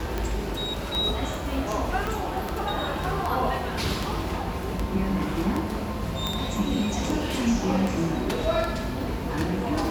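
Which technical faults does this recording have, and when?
scratch tick 78 rpm −14 dBFS
0:02.07: click
0:06.27: click −13 dBFS

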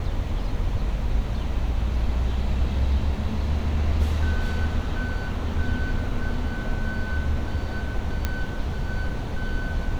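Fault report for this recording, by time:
0:08.25: click −10 dBFS

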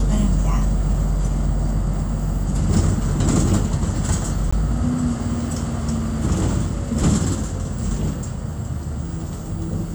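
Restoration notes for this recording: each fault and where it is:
0:04.51–0:04.53: drop-out 15 ms

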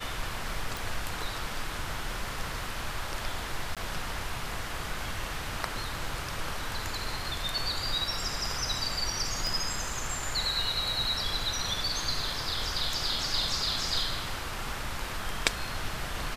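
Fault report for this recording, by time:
0:00.77: click
0:03.75–0:03.77: drop-out 17 ms
0:09.47: click

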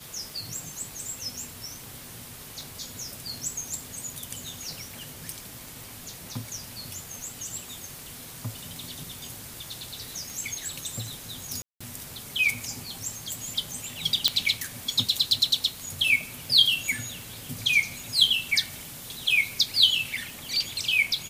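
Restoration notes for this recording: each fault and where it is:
scratch tick 78 rpm
0:11.62–0:11.80: drop-out 185 ms
0:14.28: click −4 dBFS

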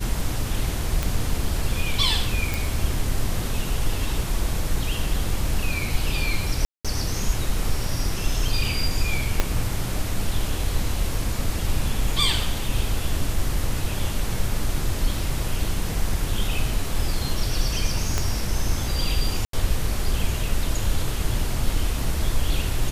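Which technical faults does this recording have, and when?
0:01.03: click
0:02.54: click
0:06.65–0:06.85: drop-out 196 ms
0:09.40: click −5 dBFS
0:18.18: click −9 dBFS
0:19.45–0:19.53: drop-out 83 ms

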